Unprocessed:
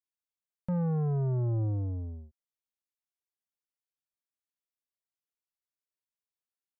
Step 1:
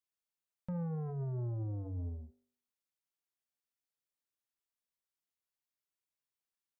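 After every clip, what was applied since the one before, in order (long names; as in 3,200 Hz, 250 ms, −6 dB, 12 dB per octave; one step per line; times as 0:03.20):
hum removal 49.15 Hz, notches 18
brickwall limiter −33.5 dBFS, peak gain reduction 10.5 dB
level −1 dB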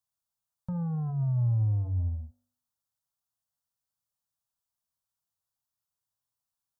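parametric band 110 Hz +8.5 dB 0.99 octaves
phaser with its sweep stopped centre 930 Hz, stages 4
level +5 dB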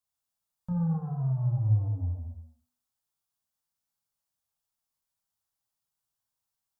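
reverb whose tail is shaped and stops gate 360 ms falling, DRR −2 dB
level −2.5 dB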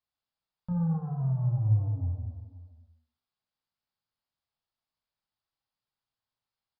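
single-tap delay 522 ms −17 dB
downsampling to 11,025 Hz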